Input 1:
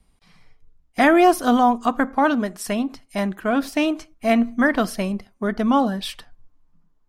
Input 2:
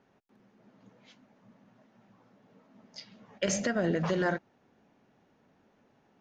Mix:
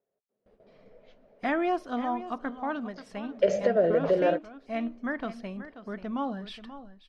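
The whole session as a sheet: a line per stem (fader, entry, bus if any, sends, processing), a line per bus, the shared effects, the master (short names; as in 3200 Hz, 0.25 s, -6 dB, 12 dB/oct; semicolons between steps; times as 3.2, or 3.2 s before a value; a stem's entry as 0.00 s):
-7.0 dB, 0.45 s, no send, echo send -20 dB, auto duck -7 dB, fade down 1.90 s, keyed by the second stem
-4.5 dB, 0.00 s, no send, no echo send, band shelf 520 Hz +14.5 dB 1 oct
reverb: off
echo: echo 0.533 s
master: gate with hold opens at -50 dBFS; LPF 3700 Hz 12 dB/oct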